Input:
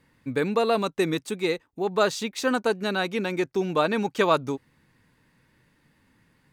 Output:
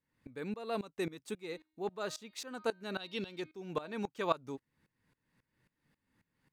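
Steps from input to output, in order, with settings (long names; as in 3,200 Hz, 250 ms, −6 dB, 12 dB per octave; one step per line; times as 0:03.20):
0:01.31–0:03.91: hum removal 312 Hz, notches 15
0:03.00–0:03.41: gain on a spectral selection 2,600–5,600 Hz +12 dB
tremolo with a ramp in dB swelling 3.7 Hz, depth 20 dB
level −7.5 dB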